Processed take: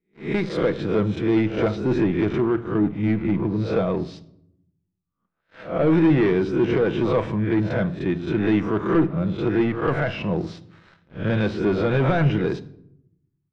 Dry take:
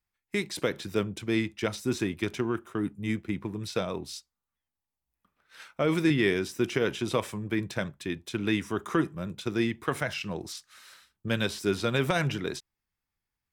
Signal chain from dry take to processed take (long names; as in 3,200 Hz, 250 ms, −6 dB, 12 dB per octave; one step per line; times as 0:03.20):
peak hold with a rise ahead of every peak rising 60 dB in 0.41 s
leveller curve on the samples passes 3
head-to-tape spacing loss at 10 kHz 36 dB, from 0:01.69 at 10 kHz 42 dB
convolution reverb RT60 0.75 s, pre-delay 6 ms, DRR 11.5 dB